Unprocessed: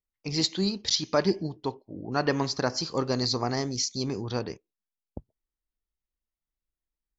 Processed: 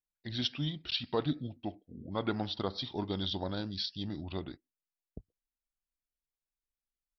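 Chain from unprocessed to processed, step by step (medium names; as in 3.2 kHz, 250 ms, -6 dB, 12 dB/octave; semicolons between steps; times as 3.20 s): pitch shift -4.5 st; trim -7.5 dB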